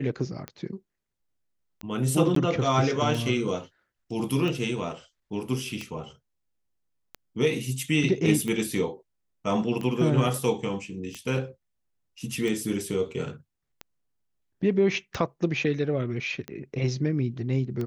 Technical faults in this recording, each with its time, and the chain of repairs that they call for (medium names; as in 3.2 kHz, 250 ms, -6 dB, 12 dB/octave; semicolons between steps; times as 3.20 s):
tick 45 rpm -20 dBFS
2.35–2.36 s: dropout 13 ms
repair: de-click; interpolate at 2.35 s, 13 ms